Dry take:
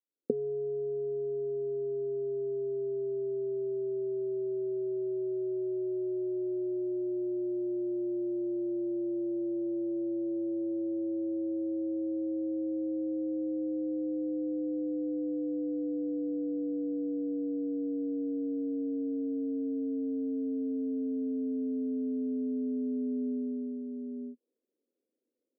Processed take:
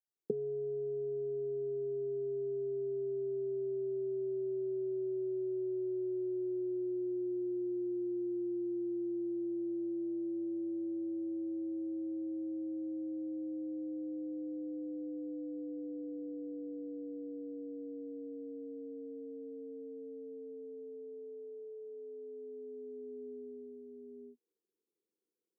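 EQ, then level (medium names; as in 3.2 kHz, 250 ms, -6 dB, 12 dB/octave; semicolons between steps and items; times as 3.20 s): high-pass 110 Hz; bass shelf 200 Hz +8.5 dB; static phaser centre 390 Hz, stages 8; -5.0 dB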